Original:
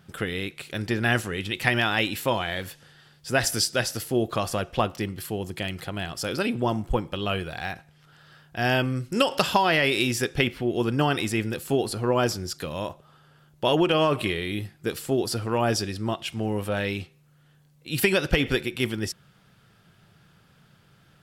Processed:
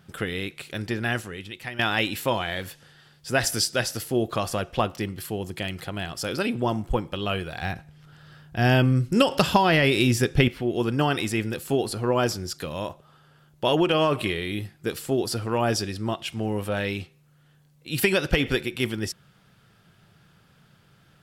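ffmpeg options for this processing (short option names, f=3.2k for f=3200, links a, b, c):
-filter_complex "[0:a]asettb=1/sr,asplit=3[a][b][c];[a]atrim=end=7.624[d];[b]atrim=start=7.62:end=10.48,asetpts=PTS-STARTPTS,afade=t=in:d=0.004:c=qsin,afade=t=out:st=2.856:d=0.004:c=qsin,lowshelf=f=270:g=10[e];[c]atrim=start=10.476[f];[d][e]acrossfade=d=0.004:c1=hsin:c2=qsin[g];[g][f]acrossfade=d=0.004:c1=qsin:c2=hsin,asplit=2[h][i];[h]atrim=end=1.79,asetpts=PTS-STARTPTS,afade=t=out:st=0.62:d=1.17:silence=0.16788[j];[i]atrim=start=1.79,asetpts=PTS-STARTPTS,afade=t=in:d=0.004:c=hsin:silence=0.16788[k];[j][k]concat=n=2:v=0:a=1"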